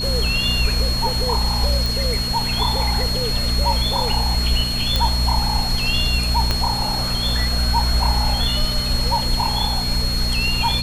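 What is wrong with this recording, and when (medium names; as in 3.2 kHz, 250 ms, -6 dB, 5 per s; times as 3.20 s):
hum 60 Hz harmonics 4 -25 dBFS
whine 4.3 kHz -23 dBFS
1.86 s: pop
4.96 s: pop
6.51 s: pop -5 dBFS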